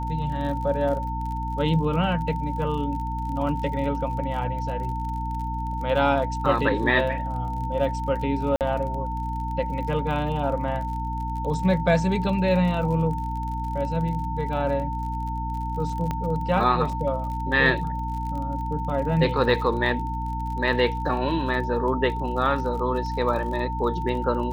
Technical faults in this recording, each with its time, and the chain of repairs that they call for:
crackle 42/s -33 dBFS
hum 60 Hz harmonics 5 -30 dBFS
tone 900 Hz -30 dBFS
8.56–8.61 gap 48 ms
16.11 pop -15 dBFS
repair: de-click; de-hum 60 Hz, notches 5; notch 900 Hz, Q 30; interpolate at 8.56, 48 ms

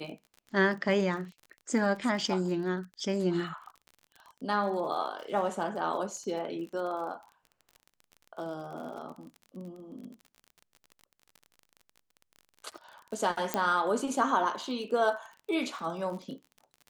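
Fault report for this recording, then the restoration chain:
crackle 38/s -40 dBFS
13.54 pop -12 dBFS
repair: de-click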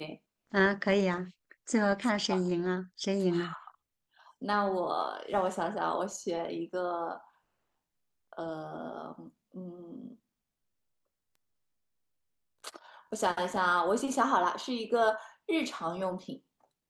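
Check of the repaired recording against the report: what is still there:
none

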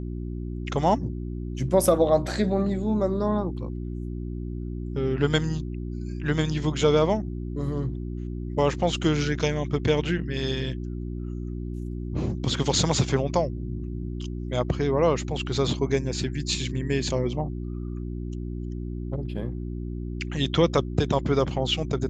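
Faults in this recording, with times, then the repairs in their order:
hum 60 Hz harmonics 6 -32 dBFS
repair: de-hum 60 Hz, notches 6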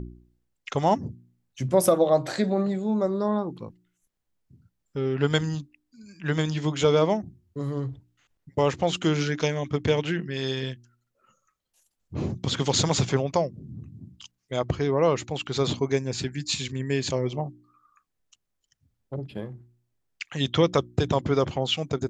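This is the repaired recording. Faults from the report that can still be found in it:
none

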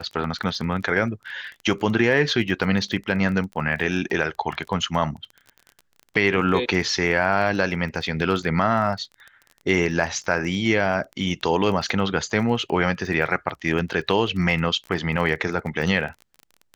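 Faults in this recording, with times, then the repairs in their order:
crackle 23/s -31 dBFS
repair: de-click

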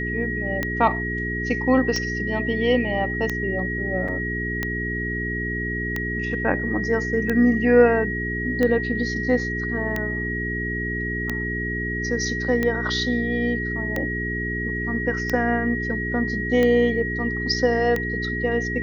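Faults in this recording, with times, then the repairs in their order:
hum 60 Hz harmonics 7 -29 dBFS
tick 45 rpm -11 dBFS
tone 1900 Hz -27 dBFS
4.08 gap 4.6 ms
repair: de-click; de-hum 60 Hz, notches 7; notch 1900 Hz, Q 30; interpolate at 4.08, 4.6 ms

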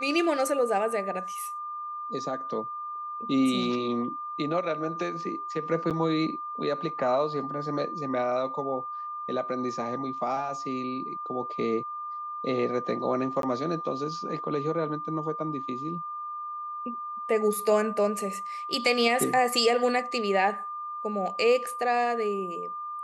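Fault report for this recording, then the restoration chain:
tone 1200 Hz -33 dBFS
5.9–5.91 gap 7.5 ms
13.42–13.43 gap 12 ms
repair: notch 1200 Hz, Q 30; interpolate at 5.9, 7.5 ms; interpolate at 13.42, 12 ms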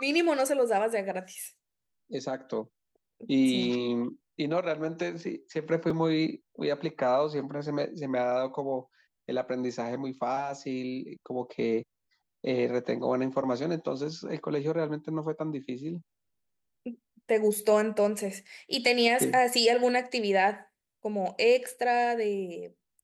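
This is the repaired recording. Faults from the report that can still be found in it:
none

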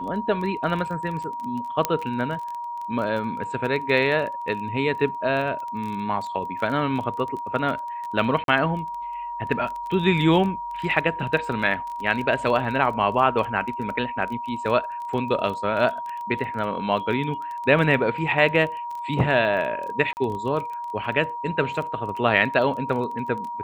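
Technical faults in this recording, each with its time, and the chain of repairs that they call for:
crackle 20/s -30 dBFS
tone 950 Hz -29 dBFS
1.85 pop -6 dBFS
8.44–8.48 gap 42 ms
20.13–20.17 gap 39 ms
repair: de-click; notch 950 Hz, Q 30; interpolate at 8.44, 42 ms; interpolate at 20.13, 39 ms

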